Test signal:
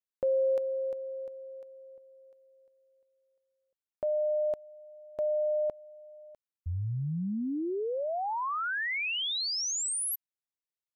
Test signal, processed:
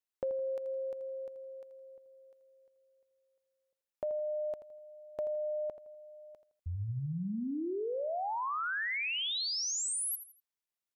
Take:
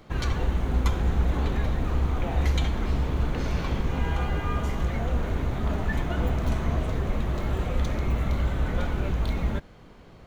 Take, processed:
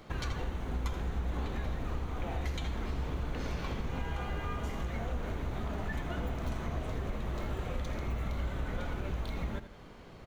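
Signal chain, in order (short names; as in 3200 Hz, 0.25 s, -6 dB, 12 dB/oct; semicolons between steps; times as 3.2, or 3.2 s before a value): low shelf 350 Hz -3 dB; compressor 3:1, threshold -34 dBFS; on a send: feedback echo 82 ms, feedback 32%, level -12 dB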